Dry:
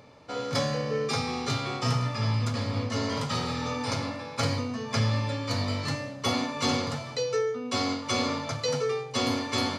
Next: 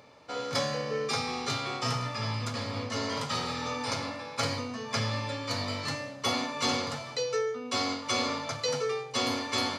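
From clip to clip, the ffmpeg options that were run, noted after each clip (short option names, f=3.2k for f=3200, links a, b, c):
-af "lowshelf=f=310:g=-8.5"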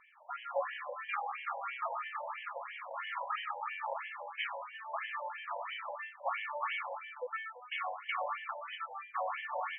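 -af "afftfilt=real='re*between(b*sr/1024,700*pow(2400/700,0.5+0.5*sin(2*PI*3*pts/sr))/1.41,700*pow(2400/700,0.5+0.5*sin(2*PI*3*pts/sr))*1.41)':imag='im*between(b*sr/1024,700*pow(2400/700,0.5+0.5*sin(2*PI*3*pts/sr))/1.41,700*pow(2400/700,0.5+0.5*sin(2*PI*3*pts/sr))*1.41)':win_size=1024:overlap=0.75,volume=1dB"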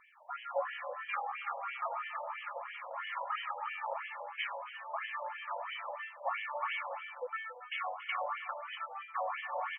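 -af "aecho=1:1:279:0.188"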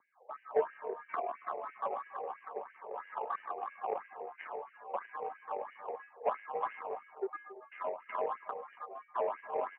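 -af "adynamicsmooth=sensitivity=1:basefreq=630,highpass=f=320:t=q:w=0.5412,highpass=f=320:t=q:w=1.307,lowpass=f=2.8k:t=q:w=0.5176,lowpass=f=2.8k:t=q:w=0.7071,lowpass=f=2.8k:t=q:w=1.932,afreqshift=-110,volume=6dB"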